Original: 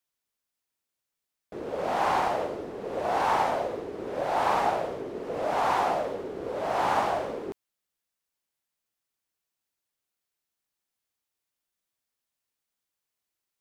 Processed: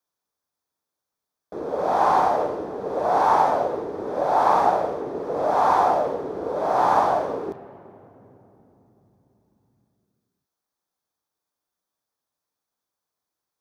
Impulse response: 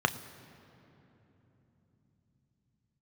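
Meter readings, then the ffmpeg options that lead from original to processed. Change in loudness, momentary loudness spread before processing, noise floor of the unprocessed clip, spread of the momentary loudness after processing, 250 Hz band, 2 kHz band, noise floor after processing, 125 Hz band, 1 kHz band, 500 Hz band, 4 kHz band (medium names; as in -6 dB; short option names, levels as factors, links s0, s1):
+6.5 dB, 11 LU, under -85 dBFS, 12 LU, +5.0 dB, +0.5 dB, under -85 dBFS, +3.5 dB, +7.0 dB, +6.0 dB, -2.0 dB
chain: -filter_complex "[0:a]asplit=2[s0][s1];[1:a]atrim=start_sample=2205,highshelf=f=3000:g=-4[s2];[s1][s2]afir=irnorm=-1:irlink=0,volume=0.355[s3];[s0][s3]amix=inputs=2:normalize=0"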